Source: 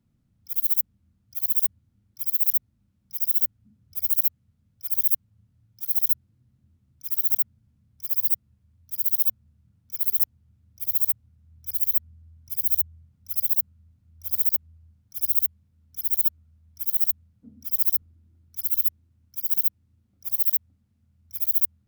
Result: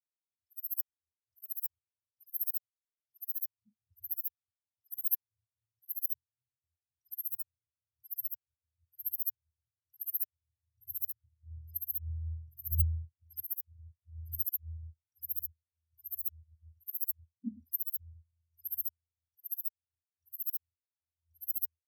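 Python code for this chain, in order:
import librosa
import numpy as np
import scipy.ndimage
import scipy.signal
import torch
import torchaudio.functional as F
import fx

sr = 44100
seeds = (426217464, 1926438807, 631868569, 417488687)

p1 = scipy.signal.sosfilt(scipy.signal.butter(2, 11000.0, 'lowpass', fs=sr, output='sos'), x)
p2 = fx.level_steps(p1, sr, step_db=19)
p3 = p1 + F.gain(torch.from_numpy(p2), -0.5).numpy()
y = fx.spectral_expand(p3, sr, expansion=4.0)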